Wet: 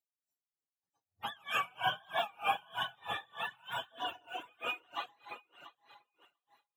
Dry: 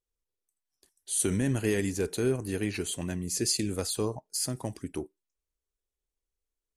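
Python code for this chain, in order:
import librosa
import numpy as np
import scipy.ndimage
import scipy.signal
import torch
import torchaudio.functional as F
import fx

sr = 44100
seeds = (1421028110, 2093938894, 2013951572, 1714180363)

p1 = fx.octave_mirror(x, sr, pivot_hz=560.0)
p2 = fx.notch(p1, sr, hz=4700.0, q=7.0)
p3 = p2 + fx.echo_feedback(p2, sr, ms=692, feedback_pct=18, wet_db=-9.5, dry=0)
p4 = fx.rev_plate(p3, sr, seeds[0], rt60_s=1.4, hf_ratio=0.85, predelay_ms=110, drr_db=-5.0)
p5 = fx.dereverb_blind(p4, sr, rt60_s=0.73)
p6 = scipy.signal.sosfilt(scipy.signal.butter(2, 320.0, 'highpass', fs=sr, output='sos'), p5)
p7 = fx.high_shelf(p6, sr, hz=2200.0, db=10.0)
p8 = p7 * 10.0 ** (-32 * (0.5 - 0.5 * np.cos(2.0 * np.pi * 3.2 * np.arange(len(p7)) / sr)) / 20.0)
y = p8 * librosa.db_to_amplitude(-4.5)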